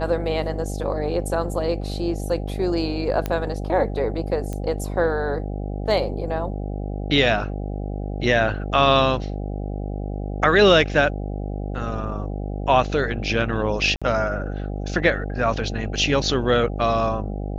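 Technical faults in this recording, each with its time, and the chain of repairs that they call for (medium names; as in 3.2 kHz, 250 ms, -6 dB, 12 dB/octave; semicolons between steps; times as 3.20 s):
buzz 50 Hz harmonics 16 -28 dBFS
3.26 s: pop -11 dBFS
4.53 s: pop -17 dBFS
13.96–14.02 s: dropout 56 ms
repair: de-click; de-hum 50 Hz, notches 16; interpolate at 13.96 s, 56 ms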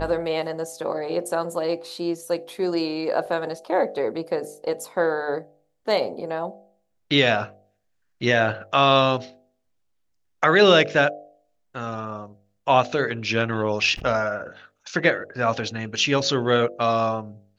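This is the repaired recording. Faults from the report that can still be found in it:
nothing left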